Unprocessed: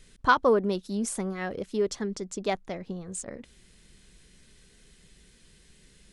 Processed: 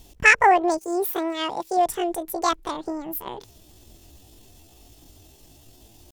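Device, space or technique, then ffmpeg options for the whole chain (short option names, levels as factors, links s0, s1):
chipmunk voice: -filter_complex "[0:a]asettb=1/sr,asplit=3[s0][s1][s2];[s0]atrim=end=0.794[s3];[s1]atrim=start=0.79:end=1.79,asetpts=PTS-STARTPTS,afade=t=in:d=0.004:c=qsin,afade=t=out:st=0.996:d=0.004:c=qsin,highpass=f=110:p=1[s4];[s2]atrim=start=1.786[s5];[s3][s4]acrossfade=d=0.004:c1=hsin:c2=qsin[s6];[s6][s5]acrossfade=d=0.004:c1=qsin:c2=hsin,asetrate=76340,aresample=44100,atempo=0.577676,volume=2"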